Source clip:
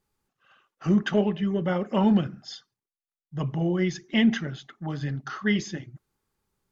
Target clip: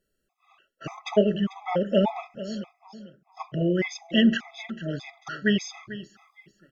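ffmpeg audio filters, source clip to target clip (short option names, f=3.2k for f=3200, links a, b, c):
-af "equalizer=f=100:t=o:w=0.67:g=-12,equalizer=f=630:t=o:w=0.67:g=7,equalizer=f=2.5k:t=o:w=0.67:g=5,aecho=1:1:443|886|1329:0.178|0.0569|0.0182,afftfilt=real='re*gt(sin(2*PI*1.7*pts/sr)*(1-2*mod(floor(b*sr/1024/660),2)),0)':imag='im*gt(sin(2*PI*1.7*pts/sr)*(1-2*mod(floor(b*sr/1024/660),2)),0)':win_size=1024:overlap=0.75,volume=2dB"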